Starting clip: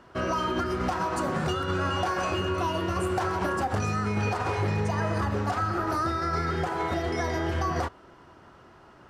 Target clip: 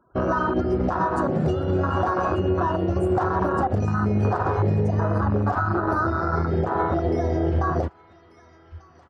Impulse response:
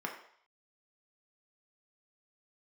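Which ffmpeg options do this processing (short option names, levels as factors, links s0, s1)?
-filter_complex "[0:a]asettb=1/sr,asplit=3[s0][s1][s2];[s0]atrim=end=2.134[s3];[s1]atrim=start=2.13:end=2.74,asetpts=PTS-STARTPTS,afade=t=in:d=0.004:c=qsin,afade=t=out:st=0.606:d=0.004:c=qsin,lowpass=7900[s4];[s2]atrim=start=2.736[s5];[s3][s4]acrossfade=d=0.004:c1=hsin:c2=qsin[s6];[s6][s5]acrossfade=d=0.004:c1=qsin:c2=hsin,afftfilt=real='re*gte(hypot(re,im),0.00398)':imag='im*gte(hypot(re,im),0.00398)':win_size=1024:overlap=0.75,aecho=1:1:1191|2382|3573:0.158|0.0491|0.0152,afwtdn=0.0631,alimiter=limit=0.0841:level=0:latency=1:release=74,volume=2.51"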